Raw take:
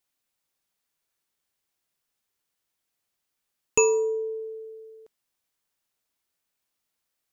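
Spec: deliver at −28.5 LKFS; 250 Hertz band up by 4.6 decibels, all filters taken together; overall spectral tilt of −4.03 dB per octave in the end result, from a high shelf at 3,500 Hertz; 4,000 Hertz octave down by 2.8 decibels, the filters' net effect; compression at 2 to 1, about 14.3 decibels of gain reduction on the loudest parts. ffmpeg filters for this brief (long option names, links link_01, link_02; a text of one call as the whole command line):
ffmpeg -i in.wav -af "equalizer=frequency=250:width_type=o:gain=6.5,highshelf=frequency=3500:gain=4.5,equalizer=frequency=4000:width_type=o:gain=-8.5,acompressor=threshold=-41dB:ratio=2,volume=8.5dB" out.wav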